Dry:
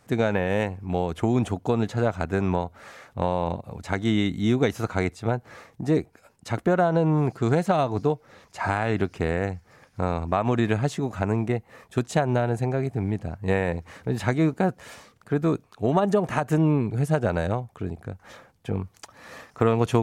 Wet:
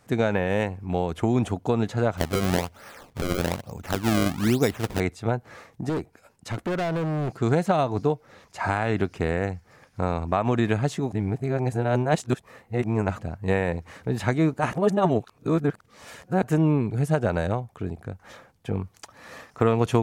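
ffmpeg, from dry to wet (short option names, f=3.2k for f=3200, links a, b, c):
-filter_complex "[0:a]asettb=1/sr,asplit=3[a][b][c];[a]atrim=end=2.174[d];[b]atrim=start=2.17:end=5,asetpts=PTS-STARTPTS,afade=t=in:d=0.004:c=qsin,afade=t=out:st=2.826:d=0.004:c=qsin,acrusher=samples=28:mix=1:aa=0.000001:lfo=1:lforange=44.8:lforate=1.1[e];[c]atrim=start=4.996[f];[d][e]acrossfade=d=0.004:c1=hsin:c2=qsin[g];[g][f]acrossfade=d=0.004:c1=qsin:c2=hsin,asettb=1/sr,asplit=3[h][i][j];[h]atrim=end=5.894[k];[i]atrim=start=5.89:end=7.33,asetpts=PTS-STARTPTS,afade=t=in:d=0.004:c=qsin,afade=t=out:st=1.436:d=0.004:c=qsin,volume=24dB,asoftclip=hard,volume=-24dB[l];[j]atrim=start=7.326[m];[k][l]acrossfade=d=0.004:c1=hsin:c2=qsin[n];[n][m]acrossfade=d=0.004:c1=qsin:c2=hsin,asplit=5[o][p][q][r][s];[o]atrim=end=11.122[t];[p]atrim=start=11.118:end=13.192,asetpts=PTS-STARTPTS,areverse[u];[q]atrim=start=13.188:end=14.592[v];[r]atrim=start=14.588:end=16.432,asetpts=PTS-STARTPTS,areverse[w];[s]atrim=start=16.428[x];[t][u]acrossfade=d=0.004:c1=hsin:c2=hsin[y];[y][v]acrossfade=d=0.004:c1=hsin:c2=hsin[z];[z][w]acrossfade=d=0.004:c1=hsin:c2=hsin[aa];[aa][x]acrossfade=d=0.004:c1=hsin:c2=hsin"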